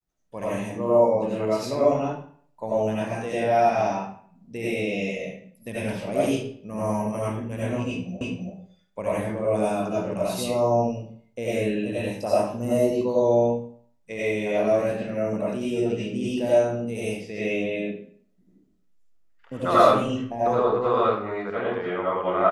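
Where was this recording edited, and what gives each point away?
8.21 s: repeat of the last 0.33 s

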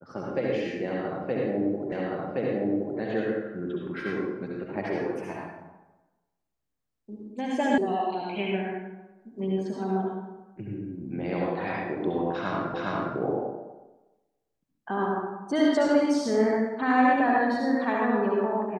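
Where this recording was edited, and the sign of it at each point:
1.92 s: repeat of the last 1.07 s
7.78 s: sound stops dead
12.74 s: repeat of the last 0.41 s

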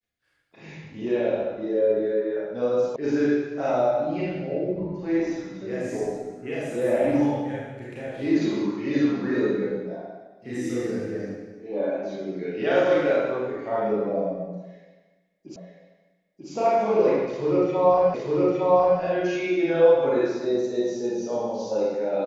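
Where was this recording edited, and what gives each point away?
2.96 s: sound stops dead
15.56 s: repeat of the last 0.94 s
18.14 s: repeat of the last 0.86 s

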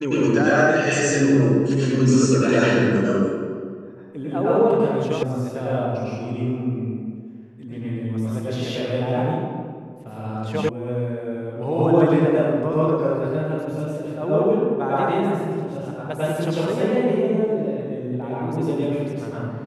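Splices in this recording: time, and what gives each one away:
5.23 s: sound stops dead
10.69 s: sound stops dead

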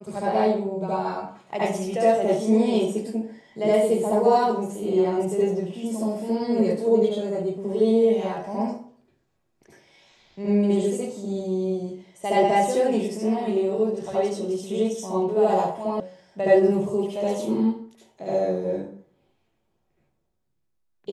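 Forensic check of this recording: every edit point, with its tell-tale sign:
16.00 s: sound stops dead

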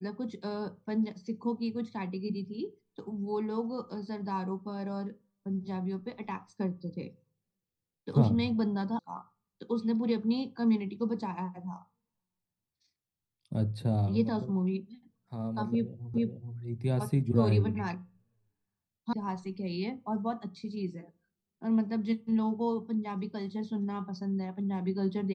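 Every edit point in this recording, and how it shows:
8.99 s: sound stops dead
16.14 s: repeat of the last 0.43 s
19.13 s: sound stops dead

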